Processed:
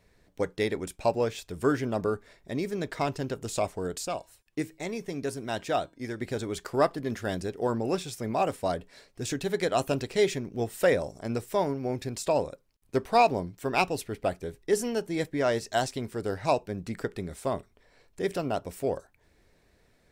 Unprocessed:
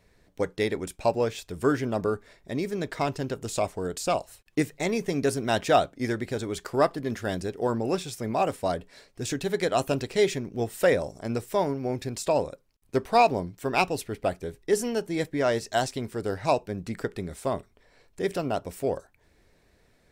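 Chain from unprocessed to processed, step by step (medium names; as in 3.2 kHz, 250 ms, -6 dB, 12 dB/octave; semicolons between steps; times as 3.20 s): 4.05–6.21 s: feedback comb 320 Hz, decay 0.36 s, harmonics odd, mix 50%; trim -1.5 dB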